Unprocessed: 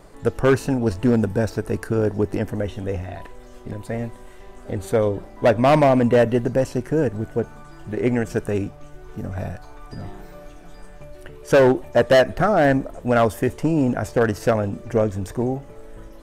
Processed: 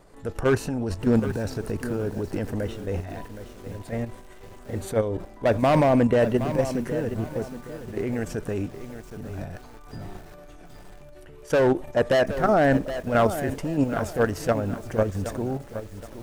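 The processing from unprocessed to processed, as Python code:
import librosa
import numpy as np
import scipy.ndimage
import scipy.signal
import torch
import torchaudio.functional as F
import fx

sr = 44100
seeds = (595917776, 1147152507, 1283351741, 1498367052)

y = fx.transient(x, sr, attack_db=-4, sustain_db=2)
y = fx.level_steps(y, sr, step_db=9)
y = fx.echo_crushed(y, sr, ms=769, feedback_pct=35, bits=7, wet_db=-11)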